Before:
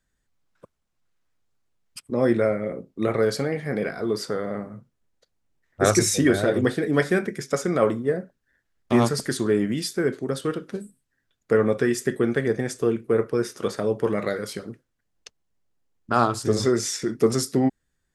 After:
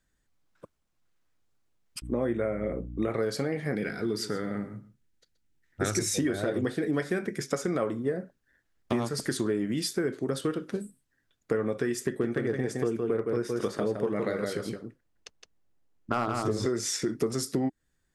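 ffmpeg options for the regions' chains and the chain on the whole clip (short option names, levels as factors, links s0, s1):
-filter_complex "[0:a]asettb=1/sr,asplit=3[s0][s1][s2];[s0]atrim=end=2.024[s3];[s1]atrim=start=2.02:end=3.1,asetpts=PTS-STARTPTS,afade=t=in:d=0.004:c=qsin,afade=t=out:st=1.076:d=0.004:c=qsin,asuperstop=centerf=4600:order=20:qfactor=2.5,highshelf=f=5200:g=-4,aeval=exprs='val(0)+0.0126*(sin(2*PI*60*n/s)+sin(2*PI*2*60*n/s)/2+sin(2*PI*3*60*n/s)/3+sin(2*PI*4*60*n/s)/4+sin(2*PI*5*60*n/s)/5)':c=same[s4];[s2]atrim=start=3.096[s5];[s3][s4]acrossfade=d=0.004:c1=hsin:c2=qsin[s6];[s6][s5]acrossfade=d=0.004:c1=qsin:c2=hsin,asettb=1/sr,asplit=3[s7][s8][s9];[s7]atrim=end=3.754[s10];[s8]atrim=start=3.75:end=5.99,asetpts=PTS-STARTPTS,afade=t=in:d=0.004:c=qsin,afade=t=out:st=2.236:d=0.004:c=qsin,equalizer=f=620:t=o:w=0.95:g=-10.5,bandreject=f=1100:w=5,aecho=1:1:127:0.168,atrim=end_sample=98784[s11];[s9]atrim=start=5.986[s12];[s10][s11]acrossfade=d=0.004:c1=hsin:c2=qsin[s13];[s13][s12]acrossfade=d=0.004:c1=qsin:c2=hsin,asettb=1/sr,asplit=3[s14][s15][s16];[s14]atrim=end=12.054[s17];[s15]atrim=start=12.05:end=16.66,asetpts=PTS-STARTPTS,afade=t=in:d=0.004:c=qsin,afade=t=out:st=4.606:d=0.004:c=qsin,highshelf=f=3200:g=-5,volume=3.98,asoftclip=hard,volume=0.251,aecho=1:1:165:0.531,atrim=end_sample=203301[s18];[s16]atrim=start=16.656[s19];[s17][s18]acrossfade=d=0.004:c1=hsin:c2=qsin[s20];[s20][s19]acrossfade=d=0.004:c1=qsin:c2=hsin,equalizer=f=310:t=o:w=0.23:g=3.5,acompressor=threshold=0.0562:ratio=6"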